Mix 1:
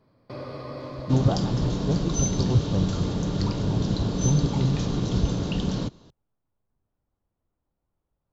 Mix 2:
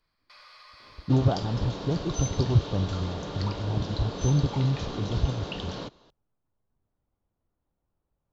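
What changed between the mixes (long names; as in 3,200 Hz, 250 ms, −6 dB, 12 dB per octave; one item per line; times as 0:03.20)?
first sound: add Bessel high-pass filter 1,900 Hz, order 4
second sound: add three-way crossover with the lows and the highs turned down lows −14 dB, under 410 Hz, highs −14 dB, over 5,000 Hz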